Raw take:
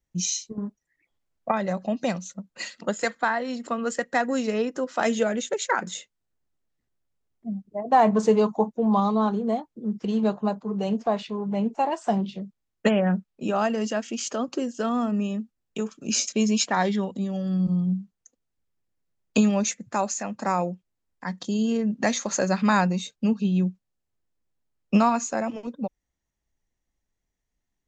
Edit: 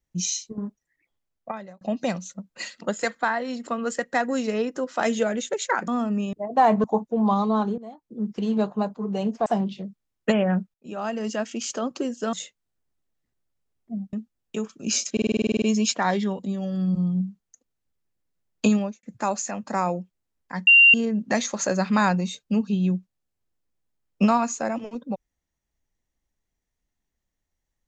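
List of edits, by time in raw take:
0.65–1.81 s: fade out equal-power
5.88–7.68 s: swap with 14.90–15.35 s
8.19–8.50 s: delete
9.44–9.84 s: fade in quadratic, from -17 dB
11.12–12.03 s: delete
13.31–13.97 s: fade in, from -19.5 dB
16.34 s: stutter 0.05 s, 11 plays
19.43–19.75 s: studio fade out
21.39–21.66 s: bleep 2.77 kHz -9.5 dBFS

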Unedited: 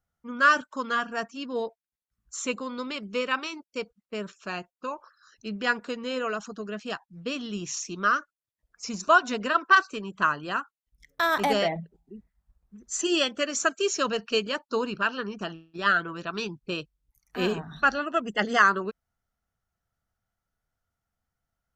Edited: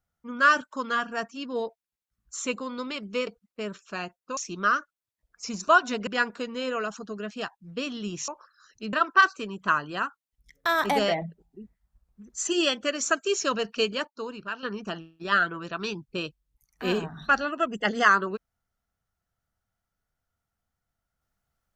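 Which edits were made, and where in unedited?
3.27–3.81 s: delete
4.91–5.56 s: swap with 7.77–9.47 s
14.61–15.17 s: gain -8 dB

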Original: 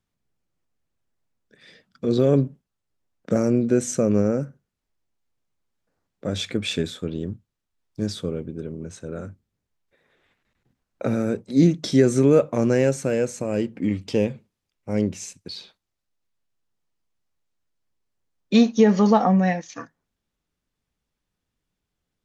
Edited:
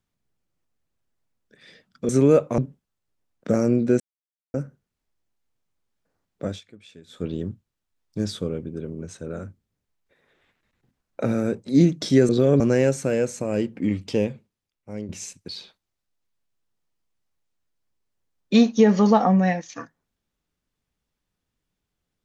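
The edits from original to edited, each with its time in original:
2.09–2.40 s: swap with 12.11–12.60 s
3.82–4.36 s: mute
6.26–7.06 s: dip -22.5 dB, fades 0.17 s
14.02–15.09 s: fade out linear, to -13 dB

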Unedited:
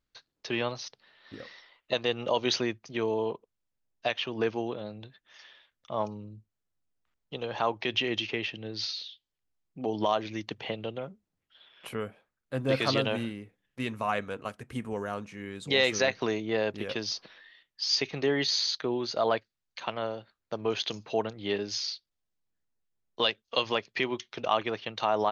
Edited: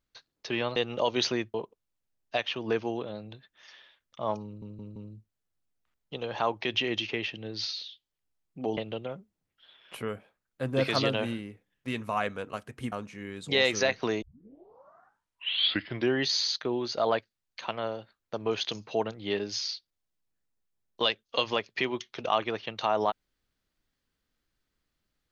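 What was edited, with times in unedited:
0.76–2.05 s: delete
2.83–3.25 s: delete
6.16 s: stutter 0.17 s, 4 plays
9.97–10.69 s: delete
14.84–15.11 s: delete
16.41 s: tape start 2.07 s

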